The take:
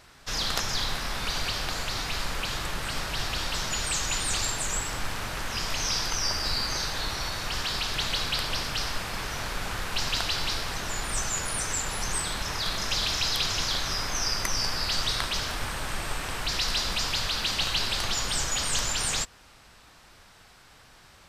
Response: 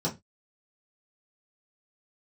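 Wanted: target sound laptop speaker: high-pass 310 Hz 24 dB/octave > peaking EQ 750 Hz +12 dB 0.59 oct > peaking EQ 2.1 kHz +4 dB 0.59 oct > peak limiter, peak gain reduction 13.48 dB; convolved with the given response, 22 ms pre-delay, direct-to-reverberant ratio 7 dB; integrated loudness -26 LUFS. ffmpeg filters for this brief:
-filter_complex "[0:a]asplit=2[s0][s1];[1:a]atrim=start_sample=2205,adelay=22[s2];[s1][s2]afir=irnorm=-1:irlink=0,volume=0.188[s3];[s0][s3]amix=inputs=2:normalize=0,highpass=f=310:w=0.5412,highpass=f=310:w=1.3066,equalizer=f=750:t=o:w=0.59:g=12,equalizer=f=2100:t=o:w=0.59:g=4,volume=1.5,alimiter=limit=0.126:level=0:latency=1"

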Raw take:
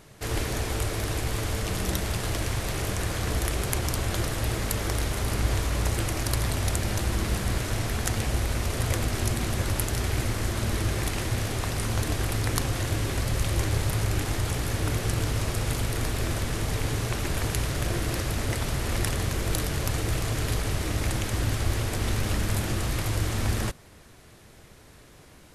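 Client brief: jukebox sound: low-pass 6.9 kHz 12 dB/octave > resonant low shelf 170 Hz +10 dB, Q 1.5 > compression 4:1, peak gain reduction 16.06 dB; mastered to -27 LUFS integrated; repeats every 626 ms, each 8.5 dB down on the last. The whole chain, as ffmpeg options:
-af "lowpass=6900,lowshelf=f=170:t=q:w=1.5:g=10,aecho=1:1:626|1252|1878|2504:0.376|0.143|0.0543|0.0206,acompressor=threshold=0.0447:ratio=4,volume=1.5"

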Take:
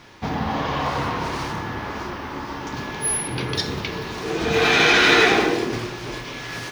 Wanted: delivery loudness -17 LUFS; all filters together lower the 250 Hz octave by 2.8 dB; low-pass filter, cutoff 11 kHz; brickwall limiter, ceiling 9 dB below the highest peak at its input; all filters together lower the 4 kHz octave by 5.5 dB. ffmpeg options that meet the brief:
-af "lowpass=11000,equalizer=f=250:t=o:g=-4,equalizer=f=4000:t=o:g=-7,volume=2.99,alimiter=limit=0.562:level=0:latency=1"

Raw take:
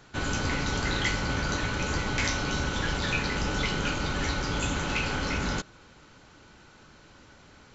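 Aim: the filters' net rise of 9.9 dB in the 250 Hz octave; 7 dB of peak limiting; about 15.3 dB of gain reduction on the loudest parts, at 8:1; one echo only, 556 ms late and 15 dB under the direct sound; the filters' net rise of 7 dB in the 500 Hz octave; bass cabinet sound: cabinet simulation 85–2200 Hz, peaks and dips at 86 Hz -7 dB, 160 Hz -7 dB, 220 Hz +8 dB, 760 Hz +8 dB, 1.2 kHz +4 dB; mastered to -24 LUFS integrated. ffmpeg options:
-af "equalizer=f=250:t=o:g=7.5,equalizer=f=500:t=o:g=5,acompressor=threshold=0.0126:ratio=8,alimiter=level_in=3.55:limit=0.0631:level=0:latency=1,volume=0.282,highpass=f=85:w=0.5412,highpass=f=85:w=1.3066,equalizer=f=86:t=q:w=4:g=-7,equalizer=f=160:t=q:w=4:g=-7,equalizer=f=220:t=q:w=4:g=8,equalizer=f=760:t=q:w=4:g=8,equalizer=f=1200:t=q:w=4:g=4,lowpass=f=2200:w=0.5412,lowpass=f=2200:w=1.3066,aecho=1:1:556:0.178,volume=10"

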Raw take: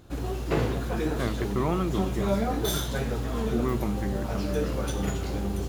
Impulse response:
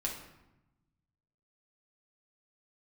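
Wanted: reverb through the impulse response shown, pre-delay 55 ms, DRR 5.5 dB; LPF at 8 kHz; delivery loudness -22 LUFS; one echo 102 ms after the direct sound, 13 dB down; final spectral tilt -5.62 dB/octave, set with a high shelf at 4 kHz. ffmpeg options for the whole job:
-filter_complex "[0:a]lowpass=8000,highshelf=f=4000:g=6,aecho=1:1:102:0.224,asplit=2[s0][s1];[1:a]atrim=start_sample=2205,adelay=55[s2];[s1][s2]afir=irnorm=-1:irlink=0,volume=0.398[s3];[s0][s3]amix=inputs=2:normalize=0,volume=1.68"

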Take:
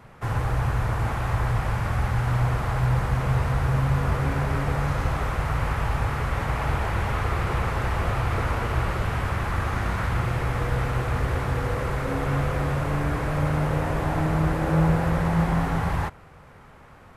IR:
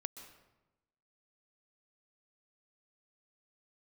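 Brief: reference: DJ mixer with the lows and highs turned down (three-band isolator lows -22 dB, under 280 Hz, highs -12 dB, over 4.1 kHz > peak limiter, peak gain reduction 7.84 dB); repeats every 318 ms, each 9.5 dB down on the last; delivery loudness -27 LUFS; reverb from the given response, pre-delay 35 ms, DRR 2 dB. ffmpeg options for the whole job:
-filter_complex "[0:a]aecho=1:1:318|636|954|1272:0.335|0.111|0.0365|0.012,asplit=2[s0][s1];[1:a]atrim=start_sample=2205,adelay=35[s2];[s1][s2]afir=irnorm=-1:irlink=0,volume=1.06[s3];[s0][s3]amix=inputs=2:normalize=0,acrossover=split=280 4100:gain=0.0794 1 0.251[s4][s5][s6];[s4][s5][s6]amix=inputs=3:normalize=0,volume=1.58,alimiter=limit=0.126:level=0:latency=1"

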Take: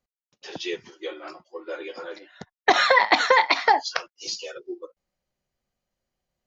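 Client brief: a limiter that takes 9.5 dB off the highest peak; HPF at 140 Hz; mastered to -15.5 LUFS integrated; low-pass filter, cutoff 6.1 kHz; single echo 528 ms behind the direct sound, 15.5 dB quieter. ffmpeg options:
-af "highpass=140,lowpass=6100,alimiter=limit=0.224:level=0:latency=1,aecho=1:1:528:0.168,volume=3.98"

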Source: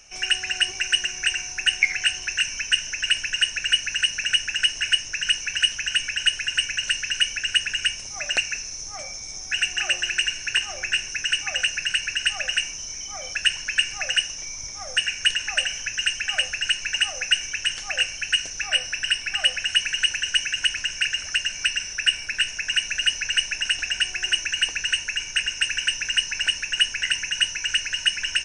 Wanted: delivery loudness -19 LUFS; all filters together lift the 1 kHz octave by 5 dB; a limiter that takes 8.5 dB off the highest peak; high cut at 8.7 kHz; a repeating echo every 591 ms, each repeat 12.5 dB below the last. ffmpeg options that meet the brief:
-af "lowpass=8700,equalizer=f=1000:t=o:g=8,alimiter=limit=0.251:level=0:latency=1,aecho=1:1:591|1182|1773:0.237|0.0569|0.0137,volume=1.68"

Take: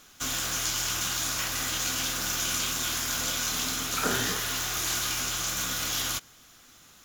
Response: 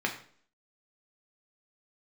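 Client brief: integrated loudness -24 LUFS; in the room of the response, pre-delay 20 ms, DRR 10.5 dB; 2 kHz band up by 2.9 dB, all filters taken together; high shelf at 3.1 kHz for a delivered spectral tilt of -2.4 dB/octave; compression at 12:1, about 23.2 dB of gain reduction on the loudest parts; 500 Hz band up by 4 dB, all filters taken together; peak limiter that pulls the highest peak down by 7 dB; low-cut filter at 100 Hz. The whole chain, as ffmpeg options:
-filter_complex "[0:a]highpass=100,equalizer=f=500:t=o:g=5,equalizer=f=2000:t=o:g=6,highshelf=f=3100:g=-6.5,acompressor=threshold=0.00501:ratio=12,alimiter=level_in=6.31:limit=0.0631:level=0:latency=1,volume=0.158,asplit=2[s0][s1];[1:a]atrim=start_sample=2205,adelay=20[s2];[s1][s2]afir=irnorm=-1:irlink=0,volume=0.112[s3];[s0][s3]amix=inputs=2:normalize=0,volume=16.8"

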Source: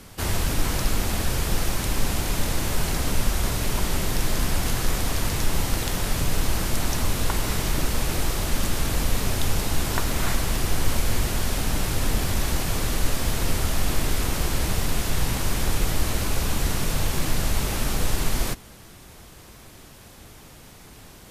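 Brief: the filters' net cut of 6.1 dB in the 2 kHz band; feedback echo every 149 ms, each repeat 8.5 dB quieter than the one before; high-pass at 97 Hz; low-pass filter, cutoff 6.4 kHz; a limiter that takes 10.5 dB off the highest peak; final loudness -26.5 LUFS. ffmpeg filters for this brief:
-af "highpass=97,lowpass=6400,equalizer=f=2000:t=o:g=-8,alimiter=limit=0.0841:level=0:latency=1,aecho=1:1:149|298|447|596:0.376|0.143|0.0543|0.0206,volume=1.58"

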